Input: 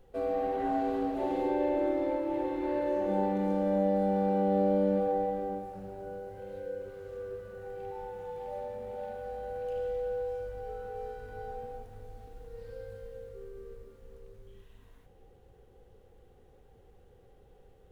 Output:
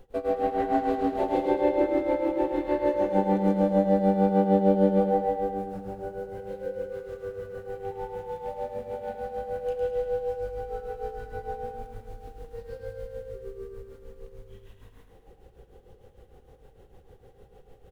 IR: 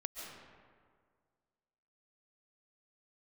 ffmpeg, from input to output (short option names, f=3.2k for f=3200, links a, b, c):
-af "tremolo=f=6.6:d=0.9,aecho=1:1:107|214|321|428|535|642:0.447|0.237|0.125|0.0665|0.0352|0.0187,volume=8dB"